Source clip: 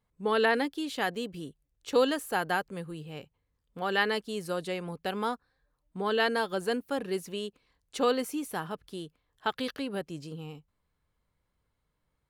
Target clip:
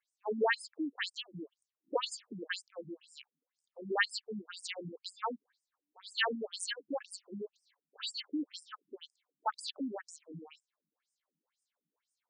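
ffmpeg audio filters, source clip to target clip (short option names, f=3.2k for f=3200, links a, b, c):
-af "aemphasis=mode=production:type=75fm,afftfilt=real='re*between(b*sr/1024,230*pow(7000/230,0.5+0.5*sin(2*PI*2*pts/sr))/1.41,230*pow(7000/230,0.5+0.5*sin(2*PI*2*pts/sr))*1.41)':imag='im*between(b*sr/1024,230*pow(7000/230,0.5+0.5*sin(2*PI*2*pts/sr))/1.41,230*pow(7000/230,0.5+0.5*sin(2*PI*2*pts/sr))*1.41)':win_size=1024:overlap=0.75"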